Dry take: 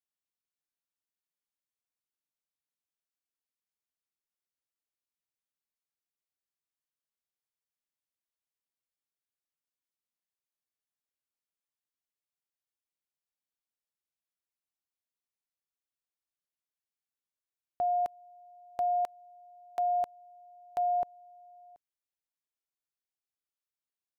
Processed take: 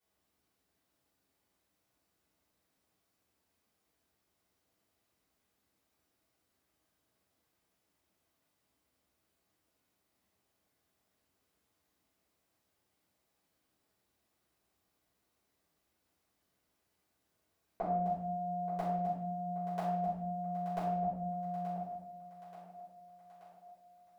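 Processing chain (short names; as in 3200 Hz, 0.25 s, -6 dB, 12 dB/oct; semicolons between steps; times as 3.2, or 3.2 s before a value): octaver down 2 oct, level +3 dB; HPF 67 Hz; bell 360 Hz +9 dB 2.8 oct; limiter -30.5 dBFS, peak gain reduction 13.5 dB; compressor 10:1, threshold -43 dBFS, peak gain reduction 9.5 dB; thinning echo 0.88 s, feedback 62%, high-pass 340 Hz, level -10.5 dB; reverb RT60 0.80 s, pre-delay 5 ms, DRR -11 dB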